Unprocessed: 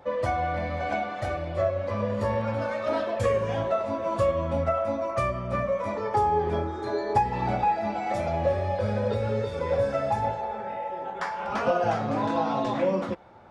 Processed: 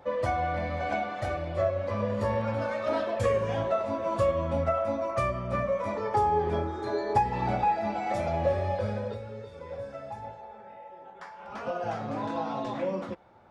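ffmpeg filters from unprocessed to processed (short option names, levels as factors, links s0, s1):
-af "volume=2,afade=t=out:st=8.71:d=0.54:silence=0.251189,afade=t=in:st=11.37:d=0.68:silence=0.421697"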